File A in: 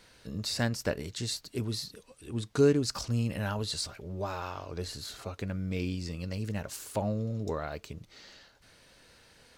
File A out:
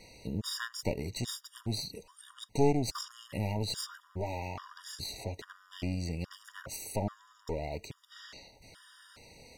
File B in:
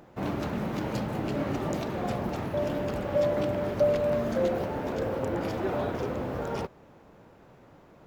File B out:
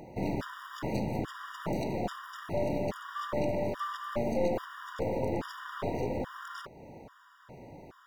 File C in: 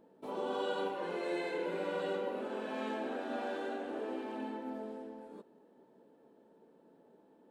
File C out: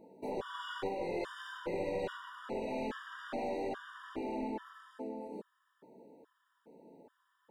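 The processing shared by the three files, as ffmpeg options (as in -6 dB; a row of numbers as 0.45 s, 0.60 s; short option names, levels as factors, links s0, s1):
-filter_complex "[0:a]asplit=2[s0][s1];[s1]acompressor=threshold=0.00891:ratio=16,volume=1[s2];[s0][s2]amix=inputs=2:normalize=0,aeval=exprs='clip(val(0),-1,0.0178)':c=same,afftfilt=real='re*gt(sin(2*PI*1.2*pts/sr)*(1-2*mod(floor(b*sr/1024/950),2)),0)':imag='im*gt(sin(2*PI*1.2*pts/sr)*(1-2*mod(floor(b*sr/1024/950),2)),0)':win_size=1024:overlap=0.75"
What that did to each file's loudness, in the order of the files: -3.0 LU, -5.0 LU, -1.5 LU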